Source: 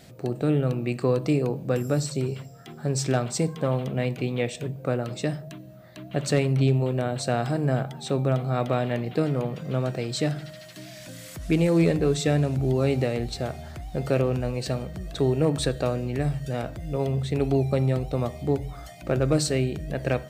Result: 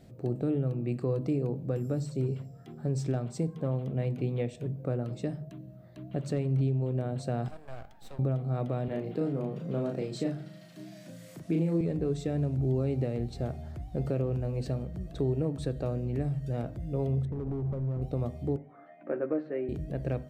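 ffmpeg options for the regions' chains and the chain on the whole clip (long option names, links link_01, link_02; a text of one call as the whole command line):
ffmpeg -i in.wav -filter_complex "[0:a]asettb=1/sr,asplit=3[link_01][link_02][link_03];[link_01]atrim=end=7.484[link_04];[link_02]atrim=start=7.48:end=8.19,asetpts=PTS-STARTPTS,afade=type=in:duration=0.004:curve=qsin,afade=type=out:start_time=0.706:duration=0.004:curve=qsin,highpass=frequency=660:width=0.5412,highpass=frequency=660:width=1.3066,aeval=exprs='max(val(0),0)':channel_layout=same[link_05];[link_03]atrim=start=8.186[link_06];[link_04][link_05]acrossfade=duration=0.004:curve1=hsin:curve2=qsin[link_07];[link_07][link_06]acrossfade=duration=0.004:curve1=qsin:curve2=hsin,asettb=1/sr,asplit=3[link_08][link_09][link_10];[link_08]atrim=end=8.884[link_11];[link_09]atrim=start=8.88:end=11.81,asetpts=PTS-STARTPTS,afade=type=in:duration=0.004:curve=qsin,afade=type=out:start_time=2.926:duration=0.004:curve=qsin,highpass=frequency=150:width=0.5412,highpass=frequency=150:width=1.3066,asplit=2[link_12][link_13];[link_13]adelay=36,volume=-3.5dB[link_14];[link_12][link_14]amix=inputs=2:normalize=0,atrim=end_sample=129213[link_15];[link_10]atrim=start=11.806[link_16];[link_11][link_15]acrossfade=duration=0.004:curve1=hsin:curve2=qsin[link_17];[link_17][link_16]acrossfade=duration=0.004:curve1=qsin:curve2=hsin,asettb=1/sr,asplit=3[link_18][link_19][link_20];[link_18]atrim=end=17.254[link_21];[link_19]atrim=start=17.25:end=18.02,asetpts=PTS-STARTPTS,afade=type=in:duration=0.004:curve=qsin,afade=type=out:start_time=0.766:duration=0.004:curve=qsin,acompressor=threshold=-23dB:ratio=10:attack=3.2:release=140:knee=1:detection=peak,lowpass=frequency=1600:width=0.5412,lowpass=frequency=1600:width=1.3066,asoftclip=type=hard:threshold=-27dB[link_22];[link_20]atrim=start=18.016[link_23];[link_21][link_22]acrossfade=duration=0.004:curve1=hsin:curve2=qsin[link_24];[link_24][link_23]acrossfade=duration=0.004:curve1=qsin:curve2=hsin,asettb=1/sr,asplit=3[link_25][link_26][link_27];[link_25]atrim=end=18.564[link_28];[link_26]atrim=start=18.56:end=19.69,asetpts=PTS-STARTPTS,afade=type=in:duration=0.004:curve=qsin,afade=type=out:start_time=1.126:duration=0.004:curve=qsin,highpass=frequency=270:width=0.5412,highpass=frequency=270:width=1.3066,equalizer=frequency=360:width_type=q:width=4:gain=-4,equalizer=frequency=740:width_type=q:width=4:gain=-3,equalizer=frequency=1700:width_type=q:width=4:gain=5,lowpass=frequency=2100:width=0.5412,lowpass=frequency=2100:width=1.3066,asplit=2[link_29][link_30];[link_30]adelay=13,volume=-6dB[link_31];[link_29][link_31]amix=inputs=2:normalize=0,atrim=end_sample=49833[link_32];[link_27]atrim=start=19.686[link_33];[link_28][link_32]acrossfade=duration=0.004:curve1=hsin:curve2=qsin[link_34];[link_34][link_33]acrossfade=duration=0.004:curve1=qsin:curve2=hsin,tiltshelf=frequency=690:gain=7.5,bandreject=frequency=50:width_type=h:width=6,bandreject=frequency=100:width_type=h:width=6,bandreject=frequency=150:width_type=h:width=6,bandreject=frequency=200:width_type=h:width=6,bandreject=frequency=250:width_type=h:width=6,alimiter=limit=-12.5dB:level=0:latency=1:release=389,volume=-7.5dB" out.wav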